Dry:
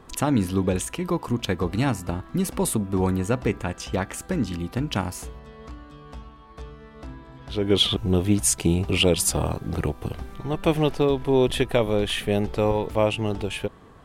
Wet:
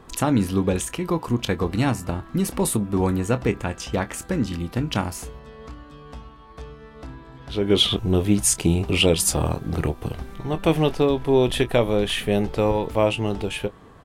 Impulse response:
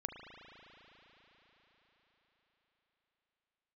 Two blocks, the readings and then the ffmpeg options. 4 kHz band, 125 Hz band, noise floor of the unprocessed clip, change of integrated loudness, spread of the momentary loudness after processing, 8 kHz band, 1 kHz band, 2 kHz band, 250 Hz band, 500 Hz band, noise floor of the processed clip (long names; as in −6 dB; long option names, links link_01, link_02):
+1.5 dB, +1.5 dB, −47 dBFS, +1.5 dB, 22 LU, +1.5 dB, +1.5 dB, +2.0 dB, +1.5 dB, +1.5 dB, −46 dBFS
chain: -filter_complex "[0:a]asplit=2[link_01][link_02];[link_02]adelay=25,volume=-13dB[link_03];[link_01][link_03]amix=inputs=2:normalize=0,volume=1.5dB"